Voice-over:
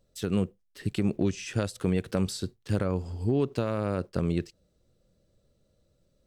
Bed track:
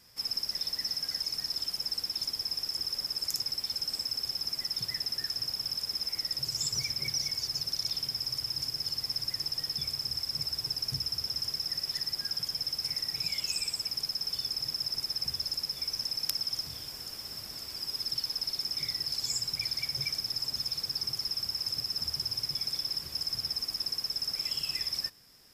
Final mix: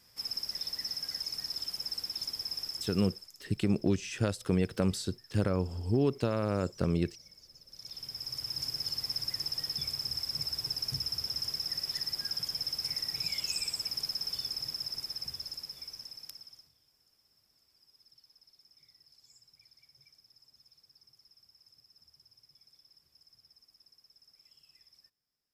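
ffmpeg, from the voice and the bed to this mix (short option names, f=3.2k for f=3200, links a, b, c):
-filter_complex "[0:a]adelay=2650,volume=-1.5dB[a];[1:a]volume=18dB,afade=t=out:st=2.62:d=0.7:silence=0.105925,afade=t=in:st=7.68:d=1:silence=0.0841395,afade=t=out:st=14.13:d=2.6:silence=0.0421697[b];[a][b]amix=inputs=2:normalize=0"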